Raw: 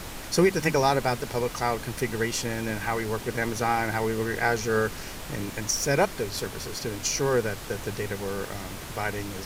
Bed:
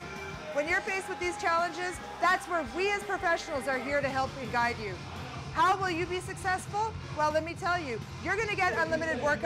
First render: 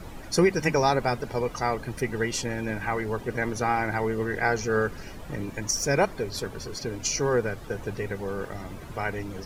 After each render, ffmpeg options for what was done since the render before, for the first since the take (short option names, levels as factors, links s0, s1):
-af "afftdn=nr=13:nf=-39"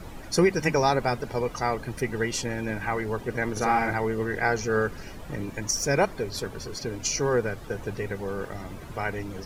-filter_complex "[0:a]asettb=1/sr,asplit=3[s0][s1][s2];[s0]atrim=end=3.524[s3];[s1]atrim=start=3.52:end=3.93,asetpts=PTS-STARTPTS,afade=t=in:d=0.004:c=qsin,afade=t=out:st=0.406:d=0.004:c=qsin,asplit=2[s4][s5];[s5]adelay=48,volume=0.708[s6];[s4][s6]amix=inputs=2:normalize=0,atrim=end_sample=18081[s7];[s2]atrim=start=3.926[s8];[s3][s7]acrossfade=d=0.004:c1=hsin:c2=qsin[s9];[s9][s8]acrossfade=d=0.004:c1=qsin:c2=hsin"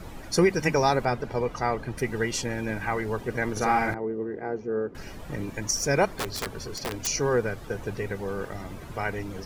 -filter_complex "[0:a]asettb=1/sr,asplit=3[s0][s1][s2];[s0]atrim=end=1.054[s3];[s1]atrim=start=1.05:end=1.98,asetpts=PTS-STARTPTS,afade=t=in:d=0.004:c=qsin,afade=t=out:st=0.926:d=0.004:c=qsin,aemphasis=mode=reproduction:type=cd[s4];[s2]atrim=start=1.976[s5];[s3][s4]acrossfade=d=0.004:c1=hsin:c2=qsin[s6];[s6][s5]acrossfade=d=0.004:c1=qsin:c2=hsin,asettb=1/sr,asplit=3[s7][s8][s9];[s7]atrim=end=3.944[s10];[s8]atrim=start=3.94:end=4.95,asetpts=PTS-STARTPTS,afade=t=in:d=0.004:c=qsin,afade=t=out:st=1.006:d=0.004:c=qsin,bandpass=f=330:t=q:w=1.4[s11];[s9]atrim=start=4.946[s12];[s10][s11]acrossfade=d=0.004:c1=hsin:c2=qsin[s13];[s13][s12]acrossfade=d=0.004:c1=qsin:c2=hsin,asettb=1/sr,asplit=3[s14][s15][s16];[s14]atrim=end=6.064[s17];[s15]atrim=start=6.06:end=7.07,asetpts=PTS-STARTPTS,afade=t=in:d=0.004:c=qsin,afade=t=out:st=1.006:d=0.004:c=qsin,aeval=exprs='(mod(15*val(0)+1,2)-1)/15':c=same[s18];[s16]atrim=start=7.066[s19];[s17][s18]acrossfade=d=0.004:c1=hsin:c2=qsin[s20];[s20][s19]acrossfade=d=0.004:c1=qsin:c2=hsin"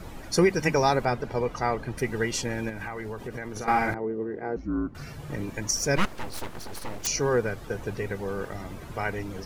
-filter_complex "[0:a]asettb=1/sr,asplit=3[s0][s1][s2];[s0]atrim=end=2.694[s3];[s1]atrim=start=2.69:end=3.68,asetpts=PTS-STARTPTS,afade=t=in:d=0.004:c=qsin,afade=t=out:st=0.986:d=0.004:c=qsin,acompressor=threshold=0.0282:ratio=5:attack=3.2:release=140:knee=1:detection=peak[s4];[s2]atrim=start=3.676[s5];[s3][s4]acrossfade=d=0.004:c1=hsin:c2=qsin[s6];[s6][s5]acrossfade=d=0.004:c1=qsin:c2=hsin,asettb=1/sr,asplit=3[s7][s8][s9];[s7]atrim=end=4.564[s10];[s8]atrim=start=4.56:end=5.3,asetpts=PTS-STARTPTS,afade=t=in:d=0.004:c=qsin,afade=t=out:st=0.736:d=0.004:c=qsin,afreqshift=-160[s11];[s9]atrim=start=5.296[s12];[s10][s11]acrossfade=d=0.004:c1=hsin:c2=qsin[s13];[s13][s12]acrossfade=d=0.004:c1=qsin:c2=hsin,asettb=1/sr,asplit=3[s14][s15][s16];[s14]atrim=end=5.964[s17];[s15]atrim=start=5.96:end=7.04,asetpts=PTS-STARTPTS,afade=t=in:d=0.004:c=qsin,afade=t=out:st=1.076:d=0.004:c=qsin,aeval=exprs='abs(val(0))':c=same[s18];[s16]atrim=start=7.036[s19];[s17][s18]acrossfade=d=0.004:c1=hsin:c2=qsin[s20];[s20][s19]acrossfade=d=0.004:c1=qsin:c2=hsin"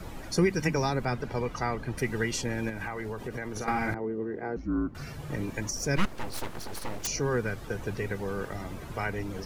-filter_complex "[0:a]acrossover=split=360|920[s0][s1][s2];[s1]acompressor=threshold=0.0141:ratio=6[s3];[s2]alimiter=limit=0.0794:level=0:latency=1:release=338[s4];[s0][s3][s4]amix=inputs=3:normalize=0"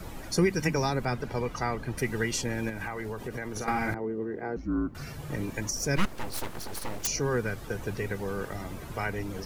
-af "crystalizer=i=0.5:c=0"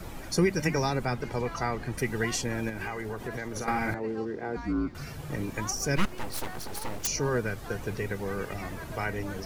-filter_complex "[1:a]volume=0.158[s0];[0:a][s0]amix=inputs=2:normalize=0"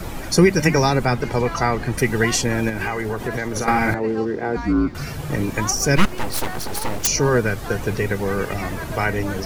-af "volume=3.35"